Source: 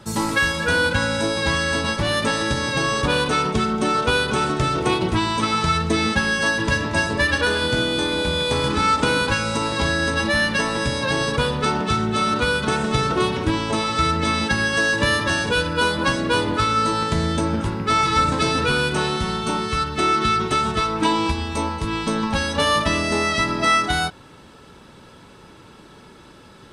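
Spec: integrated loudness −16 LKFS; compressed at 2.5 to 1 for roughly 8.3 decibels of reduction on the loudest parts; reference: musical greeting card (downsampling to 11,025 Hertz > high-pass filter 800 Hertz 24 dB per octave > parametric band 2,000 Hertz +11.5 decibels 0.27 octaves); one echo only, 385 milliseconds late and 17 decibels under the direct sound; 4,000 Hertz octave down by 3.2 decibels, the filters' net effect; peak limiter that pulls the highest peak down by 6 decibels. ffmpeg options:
ffmpeg -i in.wav -af "equalizer=frequency=4000:width_type=o:gain=-4.5,acompressor=threshold=-28dB:ratio=2.5,alimiter=limit=-20dB:level=0:latency=1,aecho=1:1:385:0.141,aresample=11025,aresample=44100,highpass=frequency=800:width=0.5412,highpass=frequency=800:width=1.3066,equalizer=frequency=2000:width_type=o:width=0.27:gain=11.5,volume=13.5dB" out.wav

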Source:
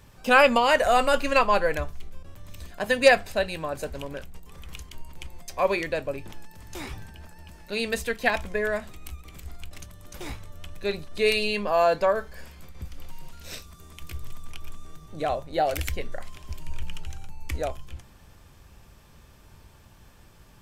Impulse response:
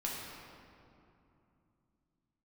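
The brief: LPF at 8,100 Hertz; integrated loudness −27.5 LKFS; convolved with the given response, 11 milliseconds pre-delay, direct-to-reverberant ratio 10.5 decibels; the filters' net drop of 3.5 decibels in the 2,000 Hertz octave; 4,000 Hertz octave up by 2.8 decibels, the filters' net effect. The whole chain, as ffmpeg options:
-filter_complex "[0:a]lowpass=8100,equalizer=frequency=2000:width_type=o:gain=-6.5,equalizer=frequency=4000:width_type=o:gain=6,asplit=2[link_01][link_02];[1:a]atrim=start_sample=2205,adelay=11[link_03];[link_02][link_03]afir=irnorm=-1:irlink=0,volume=-13.5dB[link_04];[link_01][link_04]amix=inputs=2:normalize=0,volume=-2.5dB"

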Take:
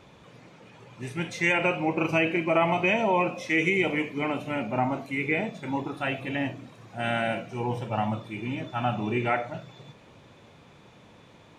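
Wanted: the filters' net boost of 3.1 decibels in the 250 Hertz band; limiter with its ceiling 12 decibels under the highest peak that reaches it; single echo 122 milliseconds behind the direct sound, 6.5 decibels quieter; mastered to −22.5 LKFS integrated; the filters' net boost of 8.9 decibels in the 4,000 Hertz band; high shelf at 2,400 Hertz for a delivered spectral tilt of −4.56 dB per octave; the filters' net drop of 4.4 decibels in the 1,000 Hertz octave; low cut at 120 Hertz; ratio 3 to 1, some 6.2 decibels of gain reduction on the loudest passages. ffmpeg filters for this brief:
ffmpeg -i in.wav -af "highpass=120,equalizer=frequency=250:width_type=o:gain=5,equalizer=frequency=1000:width_type=o:gain=-8.5,highshelf=frequency=2400:gain=7.5,equalizer=frequency=4000:width_type=o:gain=7.5,acompressor=threshold=-24dB:ratio=3,alimiter=limit=-24dB:level=0:latency=1,aecho=1:1:122:0.473,volume=10dB" out.wav

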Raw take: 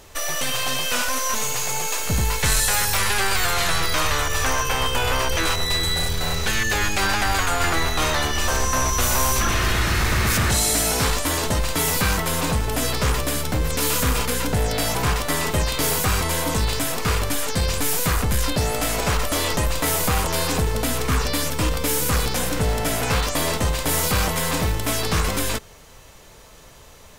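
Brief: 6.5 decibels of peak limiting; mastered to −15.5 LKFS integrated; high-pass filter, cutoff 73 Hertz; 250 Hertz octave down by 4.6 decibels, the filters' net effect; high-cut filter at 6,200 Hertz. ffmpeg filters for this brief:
ffmpeg -i in.wav -af "highpass=73,lowpass=6200,equalizer=frequency=250:width_type=o:gain=-6.5,volume=10dB,alimiter=limit=-6.5dB:level=0:latency=1" out.wav

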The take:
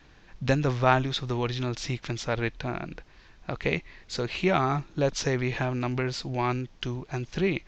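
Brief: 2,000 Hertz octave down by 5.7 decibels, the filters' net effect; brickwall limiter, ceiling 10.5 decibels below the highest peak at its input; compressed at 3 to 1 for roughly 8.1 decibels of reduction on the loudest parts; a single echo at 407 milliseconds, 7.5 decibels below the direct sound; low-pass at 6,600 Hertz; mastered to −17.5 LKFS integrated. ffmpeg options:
ffmpeg -i in.wav -af "lowpass=6600,equalizer=frequency=2000:width_type=o:gain=-7.5,acompressor=threshold=-29dB:ratio=3,alimiter=level_in=4dB:limit=-24dB:level=0:latency=1,volume=-4dB,aecho=1:1:407:0.422,volume=19.5dB" out.wav

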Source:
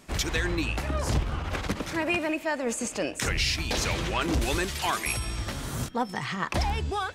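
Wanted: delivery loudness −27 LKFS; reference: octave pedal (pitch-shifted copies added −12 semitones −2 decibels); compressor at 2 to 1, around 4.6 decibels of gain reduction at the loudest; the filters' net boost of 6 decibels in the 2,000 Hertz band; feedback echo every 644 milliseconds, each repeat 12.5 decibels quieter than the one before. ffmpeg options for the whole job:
ffmpeg -i in.wav -filter_complex "[0:a]equalizer=frequency=2000:width_type=o:gain=7.5,acompressor=threshold=-28dB:ratio=2,aecho=1:1:644|1288|1932:0.237|0.0569|0.0137,asplit=2[link_01][link_02];[link_02]asetrate=22050,aresample=44100,atempo=2,volume=-2dB[link_03];[link_01][link_03]amix=inputs=2:normalize=0,volume=1dB" out.wav

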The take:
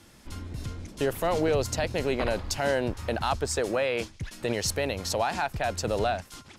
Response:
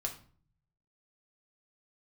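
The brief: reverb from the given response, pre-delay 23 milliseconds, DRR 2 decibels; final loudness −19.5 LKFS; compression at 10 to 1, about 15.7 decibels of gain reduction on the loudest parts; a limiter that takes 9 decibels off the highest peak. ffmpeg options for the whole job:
-filter_complex "[0:a]acompressor=threshold=-38dB:ratio=10,alimiter=level_in=8.5dB:limit=-24dB:level=0:latency=1,volume=-8.5dB,asplit=2[link_01][link_02];[1:a]atrim=start_sample=2205,adelay=23[link_03];[link_02][link_03]afir=irnorm=-1:irlink=0,volume=-3dB[link_04];[link_01][link_04]amix=inputs=2:normalize=0,volume=22dB"

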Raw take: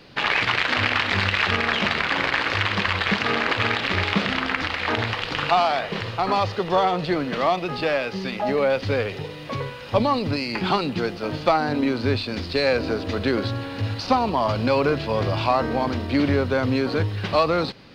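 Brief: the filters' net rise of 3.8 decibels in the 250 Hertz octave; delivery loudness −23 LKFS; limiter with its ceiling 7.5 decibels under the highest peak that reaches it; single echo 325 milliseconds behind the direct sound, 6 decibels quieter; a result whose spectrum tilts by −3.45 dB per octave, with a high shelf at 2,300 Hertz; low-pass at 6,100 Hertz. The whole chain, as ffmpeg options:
ffmpeg -i in.wav -af "lowpass=6100,equalizer=frequency=250:width_type=o:gain=4.5,highshelf=frequency=2300:gain=4.5,alimiter=limit=-12dB:level=0:latency=1,aecho=1:1:325:0.501,volume=-1dB" out.wav

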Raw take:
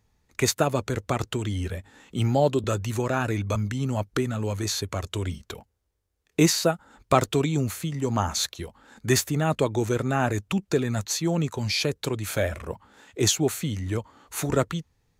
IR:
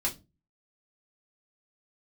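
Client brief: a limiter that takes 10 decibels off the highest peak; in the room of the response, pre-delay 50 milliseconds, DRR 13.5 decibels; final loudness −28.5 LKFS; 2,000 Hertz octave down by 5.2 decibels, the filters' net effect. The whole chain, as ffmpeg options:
-filter_complex "[0:a]equalizer=frequency=2000:width_type=o:gain=-7,alimiter=limit=-15dB:level=0:latency=1,asplit=2[link_01][link_02];[1:a]atrim=start_sample=2205,adelay=50[link_03];[link_02][link_03]afir=irnorm=-1:irlink=0,volume=-19dB[link_04];[link_01][link_04]amix=inputs=2:normalize=0,volume=-0.5dB"

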